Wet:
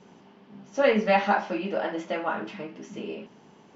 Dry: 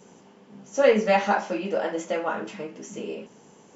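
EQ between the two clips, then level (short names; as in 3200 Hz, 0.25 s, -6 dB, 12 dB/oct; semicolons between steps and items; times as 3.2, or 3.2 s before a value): LPF 4800 Hz 24 dB/oct; bell 490 Hz -6.5 dB 0.31 oct; 0.0 dB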